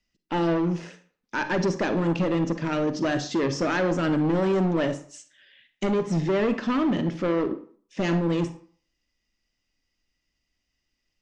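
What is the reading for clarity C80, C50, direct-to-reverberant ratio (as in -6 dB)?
16.0 dB, 11.5 dB, 10.0 dB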